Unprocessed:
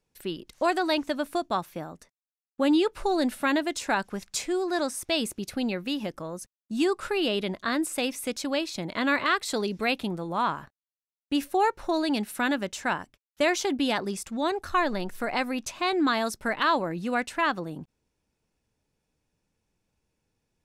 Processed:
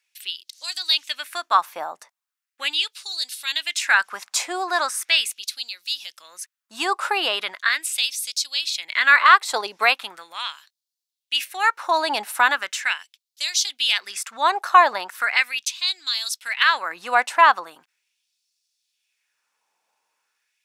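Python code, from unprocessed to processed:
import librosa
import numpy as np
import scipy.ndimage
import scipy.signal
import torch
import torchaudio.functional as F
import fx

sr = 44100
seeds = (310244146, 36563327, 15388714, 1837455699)

y = fx.filter_lfo_highpass(x, sr, shape='sine', hz=0.39, low_hz=840.0, high_hz=4500.0, q=2.2)
y = fx.transient(y, sr, attack_db=3, sustain_db=-4, at=(9.28, 10.02))
y = y * 10.0 ** (7.5 / 20.0)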